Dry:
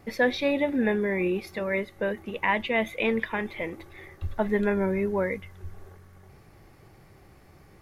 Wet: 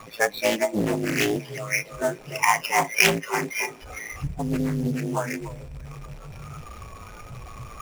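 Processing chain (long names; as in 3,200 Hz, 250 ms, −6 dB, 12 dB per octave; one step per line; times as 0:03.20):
linear delta modulator 64 kbit/s, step −30 dBFS
0:04.23–0:04.93: octave-band graphic EQ 125/500/1,000/4,000 Hz +10/−7/−10/−5 dB
ring modulation 55 Hz
tuned comb filter 130 Hz, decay 1.9 s, mix 40%
hollow resonant body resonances 210/2,400 Hz, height 14 dB, ringing for 20 ms
in parallel at 0 dB: downward compressor 6 to 1, threshold −31 dBFS, peak gain reduction 13.5 dB
on the sum: low shelf with overshoot 400 Hz −10 dB, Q 1.5
on a send: delay that swaps between a low-pass and a high-pass 294 ms, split 1,200 Hz, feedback 54%, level −5 dB
on the sum: noise reduction from a noise print of the clip's start 19 dB
treble cut that deepens with the level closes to 2,900 Hz, closed at −25 dBFS
sample-rate reduction 8,000 Hz, jitter 0%
highs frequency-modulated by the lows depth 0.72 ms
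level +7.5 dB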